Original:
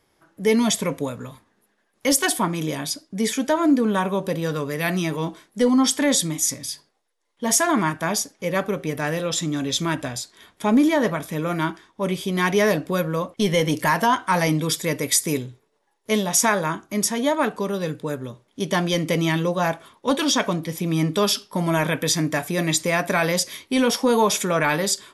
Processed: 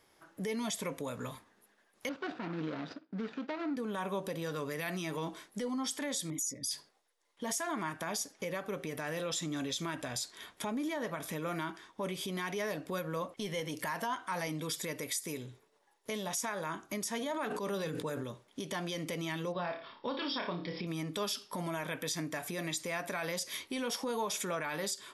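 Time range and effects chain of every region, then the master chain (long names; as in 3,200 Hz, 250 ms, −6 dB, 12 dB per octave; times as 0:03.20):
0:02.09–0:03.77: running median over 41 samples + loudspeaker in its box 180–4,500 Hz, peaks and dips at 390 Hz −4 dB, 580 Hz −4 dB, 1,400 Hz +6 dB
0:06.30–0:06.71: spectral envelope exaggerated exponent 2 + double-tracking delay 15 ms −11.5 dB
0:17.18–0:18.24: mains-hum notches 60/120/180/240/300/360/420/480 Hz + level that may fall only so fast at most 21 dB per second
0:19.52–0:20.87: linear-phase brick-wall low-pass 5,600 Hz + flutter between parallel walls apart 4.9 metres, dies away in 0.29 s
whole clip: downward compressor 10 to 1, threshold −29 dBFS; brickwall limiter −25.5 dBFS; low-shelf EQ 300 Hz −7 dB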